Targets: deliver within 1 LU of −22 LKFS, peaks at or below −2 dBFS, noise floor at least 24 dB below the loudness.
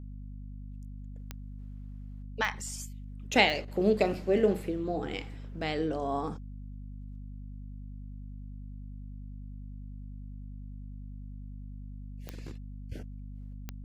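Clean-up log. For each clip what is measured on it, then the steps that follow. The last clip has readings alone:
number of clicks 5; mains hum 50 Hz; hum harmonics up to 250 Hz; level of the hum −40 dBFS; integrated loudness −31.0 LKFS; sample peak −7.0 dBFS; target loudness −22.0 LKFS
→ click removal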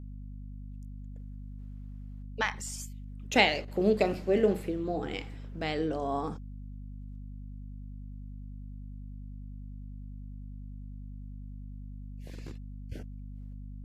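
number of clicks 0; mains hum 50 Hz; hum harmonics up to 250 Hz; level of the hum −40 dBFS
→ mains-hum notches 50/100/150/200/250 Hz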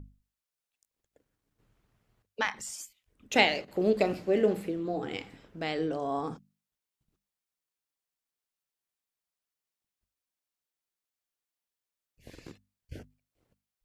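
mains hum none found; integrated loudness −30.0 LKFS; sample peak −6.5 dBFS; target loudness −22.0 LKFS
→ level +8 dB
brickwall limiter −2 dBFS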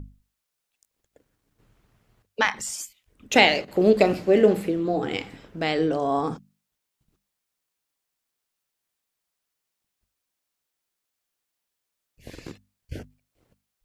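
integrated loudness −22.5 LKFS; sample peak −2.0 dBFS; background noise floor −82 dBFS

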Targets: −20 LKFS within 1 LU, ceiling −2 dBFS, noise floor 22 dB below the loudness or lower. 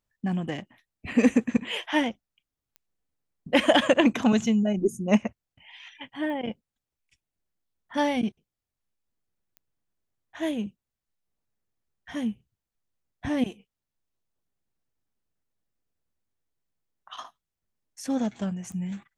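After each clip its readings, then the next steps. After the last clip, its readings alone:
number of clicks 4; integrated loudness −26.0 LKFS; sample peak −7.0 dBFS; target loudness −20.0 LKFS
→ click removal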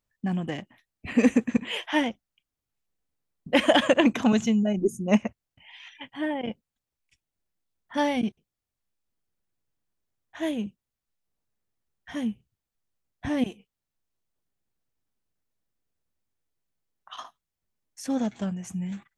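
number of clicks 0; integrated loudness −26.0 LKFS; sample peak −7.0 dBFS; target loudness −20.0 LKFS
→ level +6 dB
brickwall limiter −2 dBFS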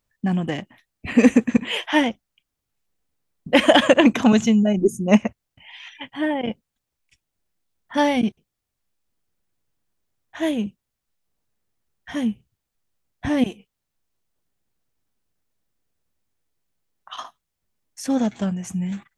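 integrated loudness −20.5 LKFS; sample peak −2.0 dBFS; background noise floor −81 dBFS

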